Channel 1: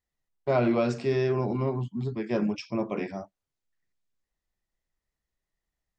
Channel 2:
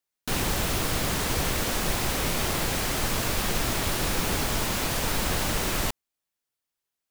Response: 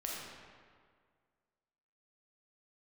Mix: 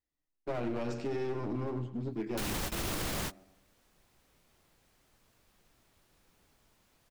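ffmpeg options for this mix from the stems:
-filter_complex "[0:a]aeval=exprs='clip(val(0),-1,0.0237)':c=same,equalizer=f=300:t=o:w=0.31:g=12,volume=0.501,asplit=3[s0][s1][s2];[s1]volume=0.237[s3];[1:a]adelay=2100,volume=1.12[s4];[s2]apad=whole_len=405912[s5];[s4][s5]sidechaingate=range=0.00708:threshold=0.00447:ratio=16:detection=peak[s6];[s3]aecho=0:1:104|208|312|416|520|624:1|0.43|0.185|0.0795|0.0342|0.0147[s7];[s0][s6][s7]amix=inputs=3:normalize=0,alimiter=level_in=1.19:limit=0.0631:level=0:latency=1:release=71,volume=0.841"

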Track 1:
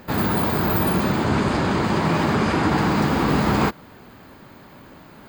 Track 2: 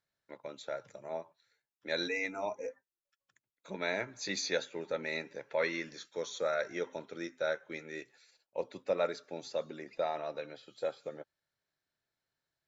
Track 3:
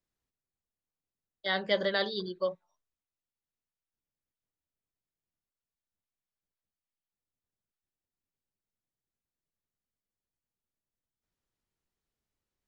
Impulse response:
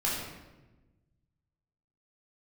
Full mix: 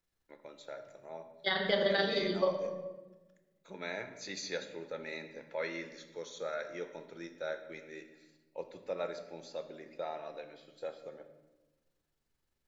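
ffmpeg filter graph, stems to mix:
-filter_complex "[1:a]volume=0.422,asplit=2[s0][s1];[s1]volume=0.224[s2];[2:a]tremolo=f=23:d=0.71,volume=1.12,asplit=2[s3][s4];[s4]volume=0.531[s5];[3:a]atrim=start_sample=2205[s6];[s2][s5]amix=inputs=2:normalize=0[s7];[s7][s6]afir=irnorm=-1:irlink=0[s8];[s0][s3][s8]amix=inputs=3:normalize=0,alimiter=limit=0.133:level=0:latency=1:release=353"

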